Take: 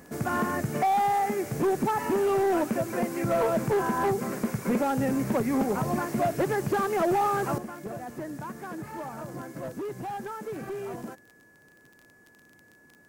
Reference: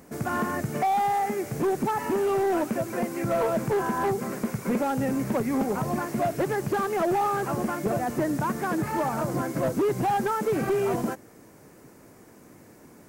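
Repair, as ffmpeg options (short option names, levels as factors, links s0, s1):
-af "adeclick=t=4,bandreject=f=1700:w=30,asetnsamples=n=441:p=0,asendcmd='7.58 volume volume 10.5dB',volume=1"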